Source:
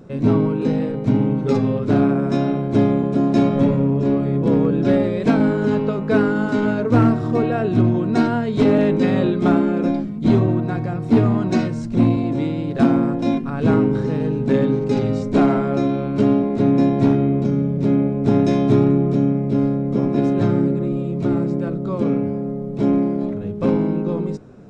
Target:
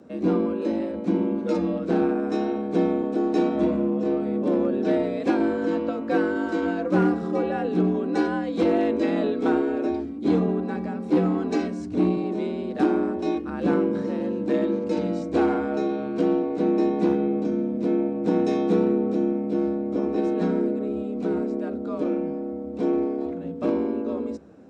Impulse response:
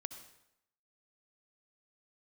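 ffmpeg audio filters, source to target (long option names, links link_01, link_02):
-af "afreqshift=70,volume=-6dB"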